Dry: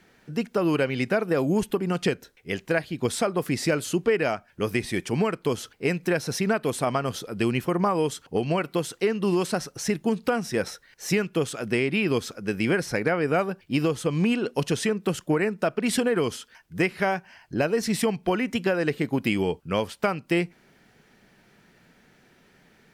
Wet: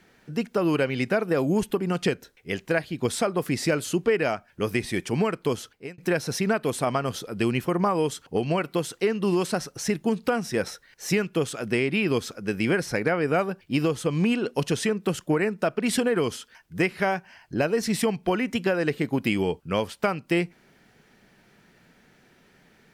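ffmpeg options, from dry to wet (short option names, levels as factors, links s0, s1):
-filter_complex "[0:a]asplit=2[s0][s1];[s0]atrim=end=5.98,asetpts=PTS-STARTPTS,afade=t=out:st=5.52:d=0.46[s2];[s1]atrim=start=5.98,asetpts=PTS-STARTPTS,afade=t=in:d=0.004:c=hsin[s3];[s2][s3]concat=n=2:v=0:a=1"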